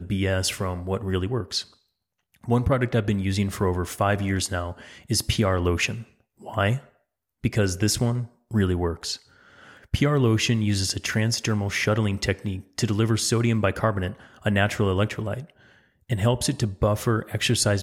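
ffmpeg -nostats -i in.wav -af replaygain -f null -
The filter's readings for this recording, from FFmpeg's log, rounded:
track_gain = +5.8 dB
track_peak = 0.286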